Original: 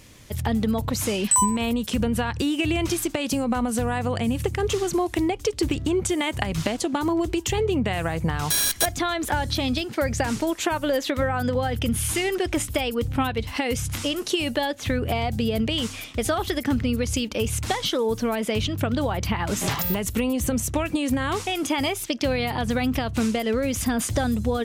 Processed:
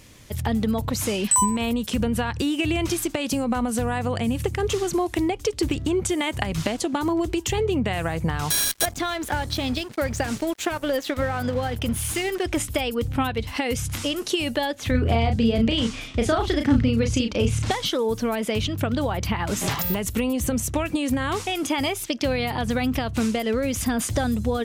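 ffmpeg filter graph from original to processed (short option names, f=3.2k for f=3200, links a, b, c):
-filter_complex "[0:a]asettb=1/sr,asplit=3[a][b][c];[a]atrim=end=8.644[d];[b]atrim=start=8.64:end=12.44,asetpts=PTS-STARTPTS,afade=t=in:d=0.004:c=qsin,afade=t=out:st=3.796:d=0.004:c=qsin,bandreject=f=960:w=12,aeval=exprs='sgn(val(0))*max(abs(val(0))-0.0119,0)':c=same[e];[c]atrim=start=12.436[f];[d][e]acrossfade=d=0.004:c1=hsin:c2=qsin[g];[g][f]acrossfade=d=0.004:c1=qsin:c2=hsin,asettb=1/sr,asplit=3[h][i][j];[h]atrim=end=14.914[k];[i]atrim=start=14.91:end=17.71,asetpts=PTS-STARTPTS,afade=t=in:d=0.004:c=qsin,afade=t=out:st=2.796:d=0.004:c=qsin,lowpass=6.7k,lowshelf=f=350:g=5,asplit=2[l][m];[m]adelay=35,volume=-6dB[n];[l][n]amix=inputs=2:normalize=0,atrim=end_sample=123480[o];[j]atrim=start=17.706[p];[k][o]acrossfade=d=0.004:c1=hsin:c2=qsin[q];[q][p]acrossfade=d=0.004:c1=qsin:c2=hsin"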